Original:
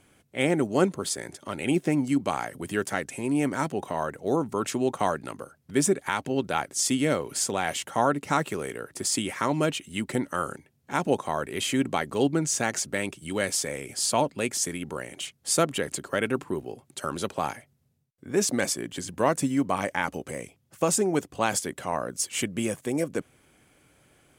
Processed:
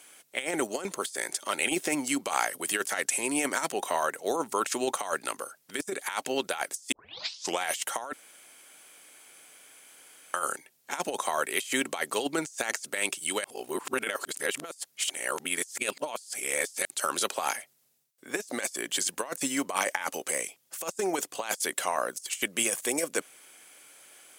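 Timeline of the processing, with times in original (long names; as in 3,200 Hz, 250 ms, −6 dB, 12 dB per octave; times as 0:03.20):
0:06.92: tape start 0.70 s
0:08.13–0:10.34: fill with room tone
0:13.44–0:16.85: reverse
whole clip: Bessel high-pass filter 630 Hz, order 2; high-shelf EQ 3,400 Hz +10.5 dB; compressor whose output falls as the input rises −30 dBFS, ratio −0.5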